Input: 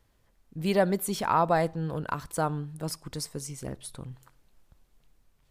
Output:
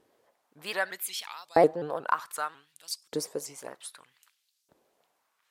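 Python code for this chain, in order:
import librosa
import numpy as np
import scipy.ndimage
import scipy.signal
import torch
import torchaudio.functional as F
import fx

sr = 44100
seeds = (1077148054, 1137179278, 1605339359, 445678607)

y = fx.filter_lfo_highpass(x, sr, shape='saw_up', hz=0.64, low_hz=360.0, high_hz=5500.0, q=1.7)
y = fx.tilt_shelf(y, sr, db=5.0, hz=690.0)
y = fx.vibrato_shape(y, sr, shape='saw_up', rate_hz=5.5, depth_cents=160.0)
y = F.gain(torch.from_numpy(y), 4.0).numpy()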